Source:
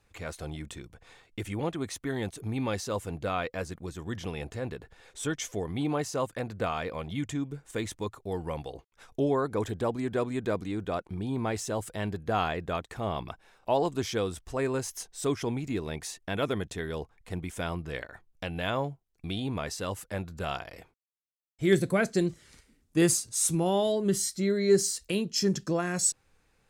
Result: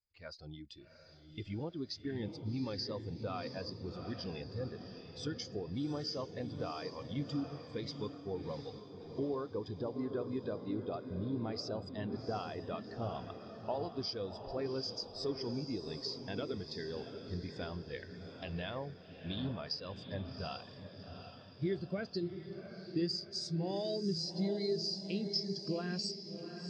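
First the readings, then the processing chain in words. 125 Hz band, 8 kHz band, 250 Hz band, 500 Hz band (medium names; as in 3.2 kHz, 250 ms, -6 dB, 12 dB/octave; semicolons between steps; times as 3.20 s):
-7.5 dB, -22.5 dB, -7.5 dB, -9.5 dB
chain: spectral noise reduction 6 dB; four-pole ladder low-pass 5 kHz, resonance 85%; compression 5:1, threshold -44 dBFS, peak gain reduction 16 dB; on a send: echo that smears into a reverb 739 ms, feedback 64%, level -5 dB; on the sum: spectral contrast expander 1.5:1; trim +8 dB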